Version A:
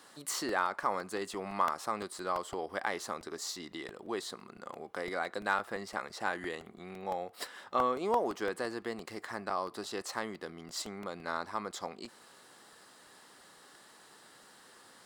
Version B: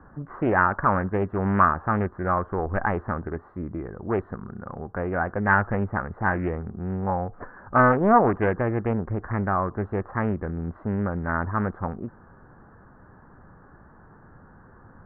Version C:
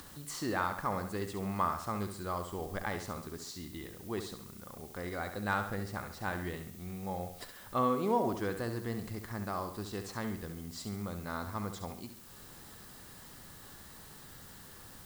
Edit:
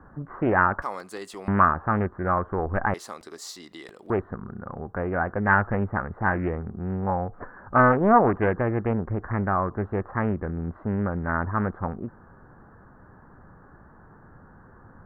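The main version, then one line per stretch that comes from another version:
B
0:00.82–0:01.48: punch in from A
0:02.94–0:04.10: punch in from A
not used: C

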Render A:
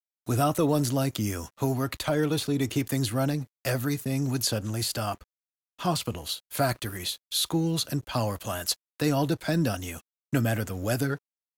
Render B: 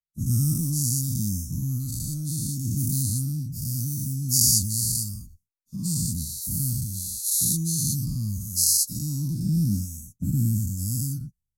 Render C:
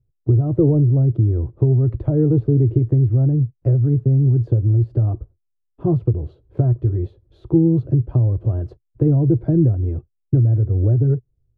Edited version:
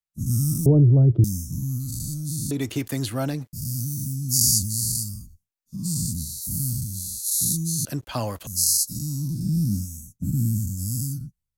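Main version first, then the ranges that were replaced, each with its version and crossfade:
B
0:00.66–0:01.24: punch in from C
0:02.51–0:03.53: punch in from A
0:07.85–0:08.47: punch in from A

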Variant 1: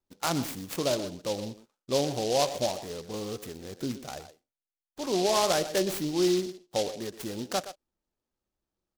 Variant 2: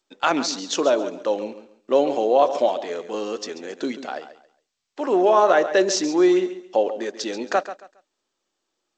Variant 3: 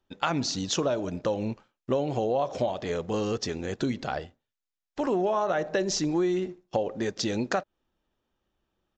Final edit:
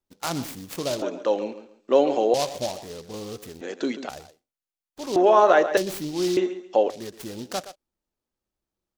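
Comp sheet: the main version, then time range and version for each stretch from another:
1
0:01.02–0:02.34: punch in from 2
0:03.61–0:04.09: punch in from 2
0:05.16–0:05.77: punch in from 2
0:06.37–0:06.90: punch in from 2
not used: 3

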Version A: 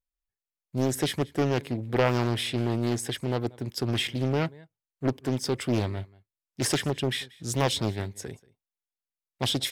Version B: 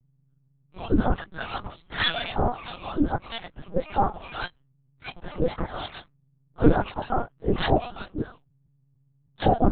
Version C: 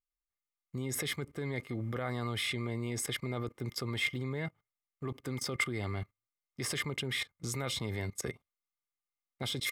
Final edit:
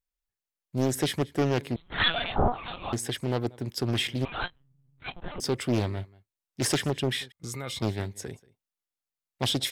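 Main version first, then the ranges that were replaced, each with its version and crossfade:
A
0:01.76–0:02.93: punch in from B
0:04.25–0:05.40: punch in from B
0:07.32–0:07.82: punch in from C

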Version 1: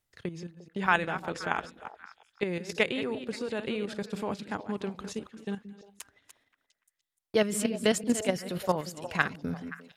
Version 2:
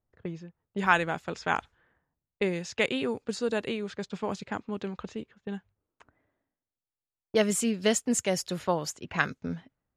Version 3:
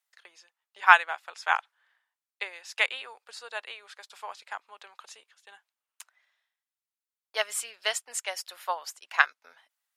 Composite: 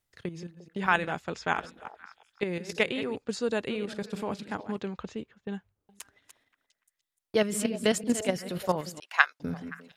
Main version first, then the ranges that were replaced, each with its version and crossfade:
1
0:01.12–0:01.53: punch in from 2
0:03.16–0:03.68: punch in from 2
0:04.78–0:05.89: punch in from 2
0:09.00–0:09.40: punch in from 3

